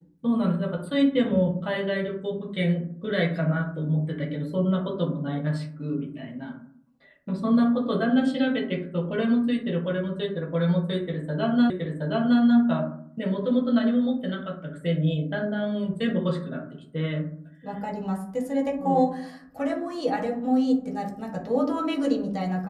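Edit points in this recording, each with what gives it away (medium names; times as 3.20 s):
11.70 s: repeat of the last 0.72 s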